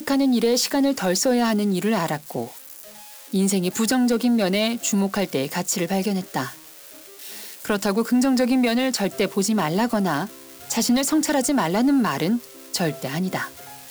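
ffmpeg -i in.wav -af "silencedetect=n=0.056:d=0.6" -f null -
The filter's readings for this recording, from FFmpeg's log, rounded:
silence_start: 2.44
silence_end: 3.34 | silence_duration: 0.89
silence_start: 6.48
silence_end: 7.65 | silence_duration: 1.17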